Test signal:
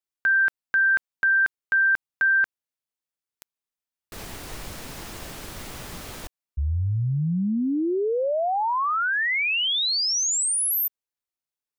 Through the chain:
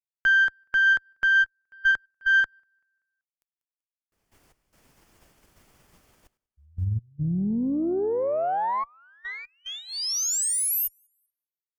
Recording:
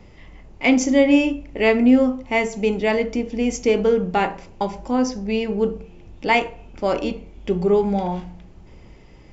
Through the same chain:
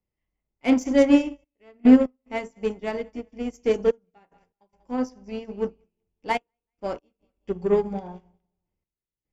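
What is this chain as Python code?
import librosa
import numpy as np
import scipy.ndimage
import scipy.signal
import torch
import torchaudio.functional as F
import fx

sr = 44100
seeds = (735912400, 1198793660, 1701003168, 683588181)

p1 = 10.0 ** (-14.5 / 20.0) * np.tanh(x / 10.0 ** (-14.5 / 20.0))
p2 = x + (p1 * librosa.db_to_amplitude(-7.0))
p3 = fx.peak_eq(p2, sr, hz=3900.0, db=-7.5, octaves=0.25)
p4 = p3 + fx.echo_feedback(p3, sr, ms=192, feedback_pct=45, wet_db=-16.0, dry=0)
p5 = fx.step_gate(p4, sr, bpm=73, pattern='xxxxxxx..x.x', floor_db=-12.0, edge_ms=4.5)
p6 = fx.dynamic_eq(p5, sr, hz=2400.0, q=2.1, threshold_db=-38.0, ratio=4.0, max_db=-6)
p7 = fx.cheby_harmonics(p6, sr, harmonics=(8,), levels_db=(-29,), full_scale_db=-4.0)
y = fx.upward_expand(p7, sr, threshold_db=-37.0, expansion=2.5)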